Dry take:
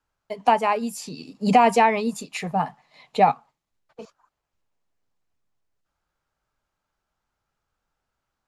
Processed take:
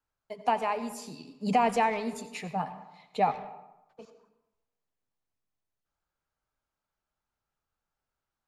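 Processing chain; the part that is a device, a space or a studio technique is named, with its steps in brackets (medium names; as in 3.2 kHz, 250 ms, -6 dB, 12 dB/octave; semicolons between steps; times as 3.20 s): saturated reverb return (on a send at -10 dB: reverberation RT60 0.90 s, pre-delay 77 ms + saturation -17 dBFS, distortion -10 dB); on the sum: trim -8.5 dB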